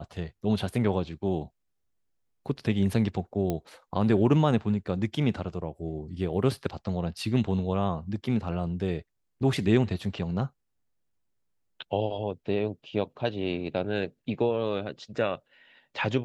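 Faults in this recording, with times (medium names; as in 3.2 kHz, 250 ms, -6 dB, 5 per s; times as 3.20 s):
3.50 s: pop -16 dBFS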